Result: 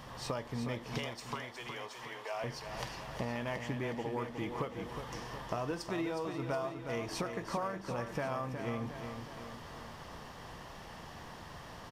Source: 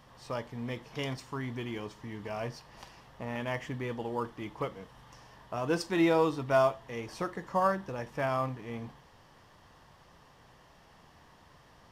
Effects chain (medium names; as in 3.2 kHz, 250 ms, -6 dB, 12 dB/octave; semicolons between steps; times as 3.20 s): compression 12:1, threshold -43 dBFS, peak gain reduction 22.5 dB; 0.98–2.44 s: high-pass 520 Hz 24 dB/octave; on a send: feedback delay 364 ms, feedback 56%, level -7.5 dB; on the sum: trim +9 dB